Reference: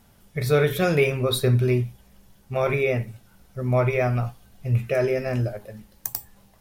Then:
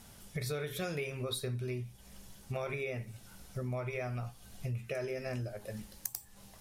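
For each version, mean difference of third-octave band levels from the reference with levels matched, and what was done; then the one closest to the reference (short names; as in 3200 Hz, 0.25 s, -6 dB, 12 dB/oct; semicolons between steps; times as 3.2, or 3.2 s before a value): 5.0 dB: LPF 11000 Hz 12 dB/oct; high shelf 3600 Hz +10 dB; compressor 6:1, threshold -36 dBFS, peak gain reduction 20 dB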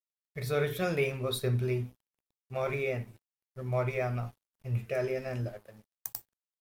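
2.0 dB: low shelf 69 Hz -3 dB; notches 50/100/150/200/250/300/350/400/450 Hz; crossover distortion -46 dBFS; gain -8.5 dB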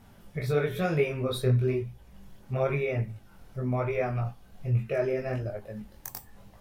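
3.5 dB: high shelf 3600 Hz -9 dB; compressor 1.5:1, threshold -45 dBFS, peak gain reduction 10.5 dB; chorus voices 2, 1 Hz, delay 21 ms, depth 3 ms; gain +6.5 dB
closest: second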